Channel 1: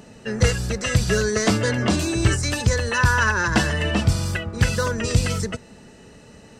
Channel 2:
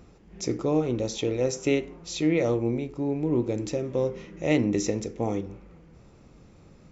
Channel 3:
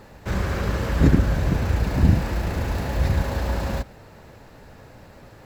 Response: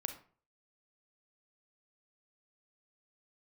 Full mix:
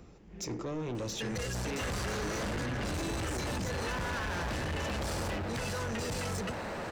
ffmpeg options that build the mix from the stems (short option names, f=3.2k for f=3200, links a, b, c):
-filter_complex "[0:a]adelay=950,volume=1dB[a];[1:a]volume=-1dB[b];[2:a]acompressor=threshold=-23dB:ratio=6,asplit=2[c][d];[d]highpass=f=720:p=1,volume=25dB,asoftclip=type=tanh:threshold=-26dB[e];[c][e]amix=inputs=2:normalize=0,lowpass=f=1.8k:p=1,volume=-6dB,adelay=1550,volume=0dB[f];[a][b]amix=inputs=2:normalize=0,acrossover=split=210|1200[g][h][i];[g]acompressor=threshold=-27dB:ratio=4[j];[h]acompressor=threshold=-29dB:ratio=4[k];[i]acompressor=threshold=-31dB:ratio=4[l];[j][k][l]amix=inputs=3:normalize=0,alimiter=limit=-21.5dB:level=0:latency=1:release=27,volume=0dB[m];[f][m]amix=inputs=2:normalize=0,asoftclip=type=tanh:threshold=-32dB"